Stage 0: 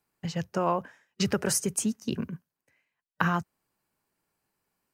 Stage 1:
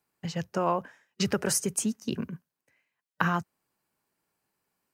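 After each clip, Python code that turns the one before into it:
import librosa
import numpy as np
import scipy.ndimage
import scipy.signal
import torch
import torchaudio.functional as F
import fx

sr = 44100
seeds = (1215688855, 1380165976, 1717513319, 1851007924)

y = fx.low_shelf(x, sr, hz=65.0, db=-9.0)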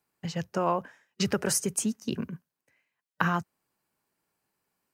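y = x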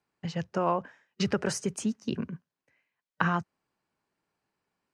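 y = fx.air_absorb(x, sr, metres=88.0)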